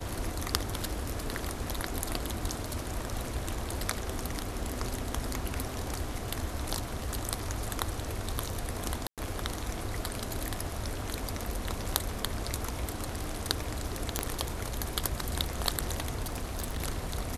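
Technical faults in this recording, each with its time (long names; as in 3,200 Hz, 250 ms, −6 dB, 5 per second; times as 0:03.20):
0:09.07–0:09.18: drop-out 107 ms
0:14.19: click −12 dBFS
0:16.25–0:16.82: clipping −28.5 dBFS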